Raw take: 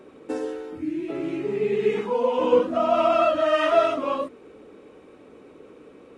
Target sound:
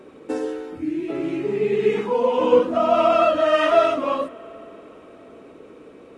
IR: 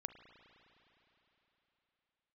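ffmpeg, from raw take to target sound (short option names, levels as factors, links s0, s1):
-filter_complex "[0:a]asplit=2[s0][s1];[1:a]atrim=start_sample=2205,asetrate=38808,aresample=44100[s2];[s1][s2]afir=irnorm=-1:irlink=0,volume=0.596[s3];[s0][s3]amix=inputs=2:normalize=0"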